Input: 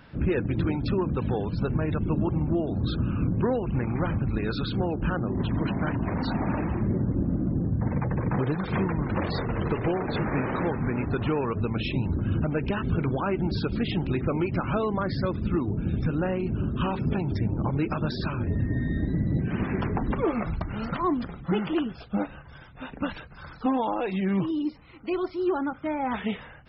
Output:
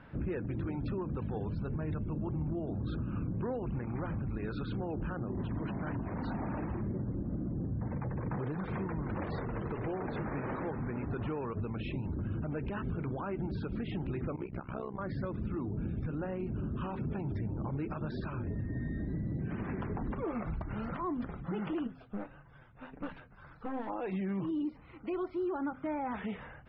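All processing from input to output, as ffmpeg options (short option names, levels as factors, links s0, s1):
-filter_complex "[0:a]asettb=1/sr,asplit=3[s0][s1][s2];[s0]atrim=end=1.224[s3];[s1]atrim=start=1.22:end=2.67,asetpts=PTS-STARTPTS,afade=t=in:d=0.004:c=qsin,afade=t=out:st=1.446:d=0.004:c=qsin,bass=f=250:g=4,treble=f=4000:g=7,bandreject=f=60:t=h:w=6,bandreject=f=120:t=h:w=6,bandreject=f=180:t=h:w=6,bandreject=f=240:t=h:w=6,bandreject=f=300:t=h:w=6,bandreject=f=360:t=h:w=6,bandreject=f=420:t=h:w=6,bandreject=f=480:t=h:w=6,bandreject=f=540:t=h:w=6,bandreject=f=600:t=h:w=6[s4];[s2]atrim=start=2.666[s5];[s3][s4]acrossfade=d=0.004:c1=hsin:c2=qsin[s6];[s6][s5]acrossfade=d=0.004:c1=qsin:c2=hsin,asettb=1/sr,asplit=3[s7][s8][s9];[s7]atrim=end=14.364[s10];[s8]atrim=start=14.36:end=14.99,asetpts=PTS-STARTPTS,afade=t=in:d=0.004:c=qsin,afade=t=out:st=0.626:d=0.004:c=qsin,tremolo=f=64:d=0.947,agate=range=0.0224:threshold=0.0398:ratio=3:release=100:detection=peak[s11];[s9]atrim=start=14.986[s12];[s10][s11]acrossfade=d=0.004:c1=hsin:c2=qsin[s13];[s13][s12]acrossfade=d=0.004:c1=qsin:c2=hsin,asettb=1/sr,asplit=3[s14][s15][s16];[s14]atrim=end=21.874[s17];[s15]atrim=start=21.87:end=23.9,asetpts=PTS-STARTPTS,afade=t=in:d=0.004:c=qsin,afade=t=out:st=2.026:d=0.004:c=qsin,aeval=exprs='(tanh(20*val(0)+0.7)-tanh(0.7))/20':c=same,flanger=delay=5.8:depth=3.7:regen=-35:speed=1.7:shape=triangular[s18];[s16]atrim=start=23.896[s19];[s17][s18]acrossfade=d=0.004:c1=hsin:c2=qsin[s20];[s20][s19]acrossfade=d=0.004:c1=qsin:c2=hsin,lowpass=2100,bandreject=f=86.52:t=h:w=4,bandreject=f=173.04:t=h:w=4,bandreject=f=259.56:t=h:w=4,alimiter=level_in=1.33:limit=0.0631:level=0:latency=1:release=127,volume=0.75,volume=0.794"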